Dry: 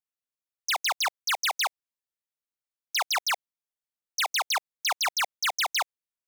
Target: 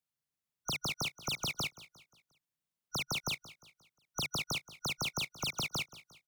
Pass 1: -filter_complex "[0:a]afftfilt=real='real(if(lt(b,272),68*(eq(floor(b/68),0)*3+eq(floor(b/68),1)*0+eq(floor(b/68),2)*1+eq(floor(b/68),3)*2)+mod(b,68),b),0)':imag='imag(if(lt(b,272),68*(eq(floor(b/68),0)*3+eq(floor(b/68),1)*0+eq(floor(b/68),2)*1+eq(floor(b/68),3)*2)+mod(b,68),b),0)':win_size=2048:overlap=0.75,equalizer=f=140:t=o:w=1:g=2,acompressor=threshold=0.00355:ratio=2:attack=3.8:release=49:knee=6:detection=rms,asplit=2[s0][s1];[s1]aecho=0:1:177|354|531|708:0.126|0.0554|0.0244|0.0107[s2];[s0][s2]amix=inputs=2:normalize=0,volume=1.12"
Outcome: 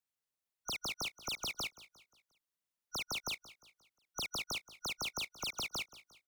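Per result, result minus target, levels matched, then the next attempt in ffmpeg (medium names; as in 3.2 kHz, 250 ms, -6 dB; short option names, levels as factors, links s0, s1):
125 Hz band -8.0 dB; compression: peak gain reduction +2.5 dB
-filter_complex "[0:a]afftfilt=real='real(if(lt(b,272),68*(eq(floor(b/68),0)*3+eq(floor(b/68),1)*0+eq(floor(b/68),2)*1+eq(floor(b/68),3)*2)+mod(b,68),b),0)':imag='imag(if(lt(b,272),68*(eq(floor(b/68),0)*3+eq(floor(b/68),1)*0+eq(floor(b/68),2)*1+eq(floor(b/68),3)*2)+mod(b,68),b),0)':win_size=2048:overlap=0.75,equalizer=f=140:t=o:w=1:g=14,acompressor=threshold=0.00355:ratio=2:attack=3.8:release=49:knee=6:detection=rms,asplit=2[s0][s1];[s1]aecho=0:1:177|354|531|708:0.126|0.0554|0.0244|0.0107[s2];[s0][s2]amix=inputs=2:normalize=0,volume=1.12"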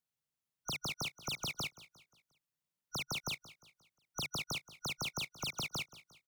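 compression: peak gain reduction +3 dB
-filter_complex "[0:a]afftfilt=real='real(if(lt(b,272),68*(eq(floor(b/68),0)*3+eq(floor(b/68),1)*0+eq(floor(b/68),2)*1+eq(floor(b/68),3)*2)+mod(b,68),b),0)':imag='imag(if(lt(b,272),68*(eq(floor(b/68),0)*3+eq(floor(b/68),1)*0+eq(floor(b/68),2)*1+eq(floor(b/68),3)*2)+mod(b,68),b),0)':win_size=2048:overlap=0.75,equalizer=f=140:t=o:w=1:g=14,acompressor=threshold=0.0075:ratio=2:attack=3.8:release=49:knee=6:detection=rms,asplit=2[s0][s1];[s1]aecho=0:1:177|354|531|708:0.126|0.0554|0.0244|0.0107[s2];[s0][s2]amix=inputs=2:normalize=0,volume=1.12"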